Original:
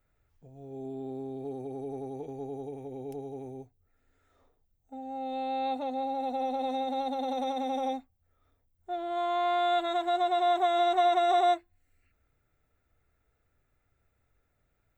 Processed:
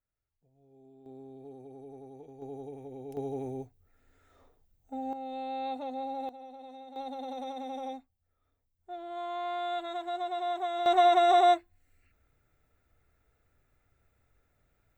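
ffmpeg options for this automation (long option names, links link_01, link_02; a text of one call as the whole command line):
ffmpeg -i in.wav -af "asetnsamples=nb_out_samples=441:pad=0,asendcmd='1.06 volume volume -10dB;2.42 volume volume -3.5dB;3.17 volume volume 4.5dB;5.13 volume volume -4dB;6.29 volume volume -16dB;6.96 volume volume -7dB;10.86 volume volume 2.5dB',volume=-18dB" out.wav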